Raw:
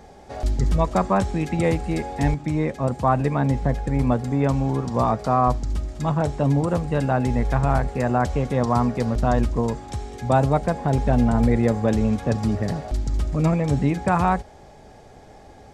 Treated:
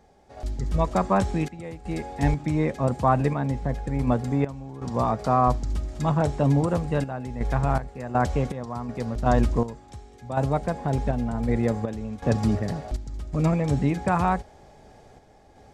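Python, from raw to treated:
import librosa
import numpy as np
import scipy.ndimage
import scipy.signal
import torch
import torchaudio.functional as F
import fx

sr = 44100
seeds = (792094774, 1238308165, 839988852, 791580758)

y = fx.tremolo_random(x, sr, seeds[0], hz=2.7, depth_pct=85)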